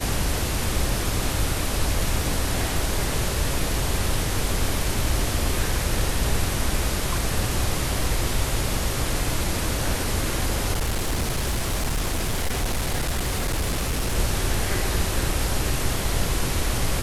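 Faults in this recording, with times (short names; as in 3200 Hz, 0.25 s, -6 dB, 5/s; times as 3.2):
10.72–14.16 clipped -20 dBFS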